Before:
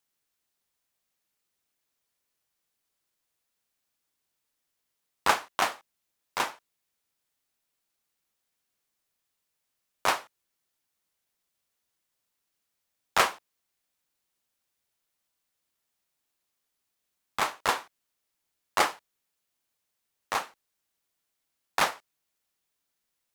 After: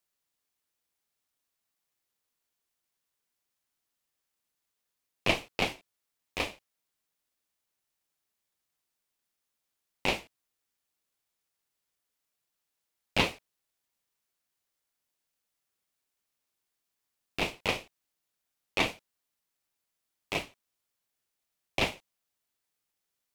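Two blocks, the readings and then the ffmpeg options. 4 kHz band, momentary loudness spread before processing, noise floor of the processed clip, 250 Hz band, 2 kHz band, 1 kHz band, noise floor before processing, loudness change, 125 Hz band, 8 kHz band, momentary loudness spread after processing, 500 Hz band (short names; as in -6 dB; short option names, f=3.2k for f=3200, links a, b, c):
+0.5 dB, 10 LU, -85 dBFS, +6.0 dB, -2.5 dB, -9.5 dB, -82 dBFS, -3.0 dB, +10.0 dB, -8.5 dB, 13 LU, -0.5 dB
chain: -filter_complex "[0:a]acrossover=split=3900[a][b];[b]acompressor=threshold=-39dB:ratio=4:attack=1:release=60[c];[a][c]amix=inputs=2:normalize=0,aeval=exprs='val(0)*sin(2*PI*1500*n/s)':c=same"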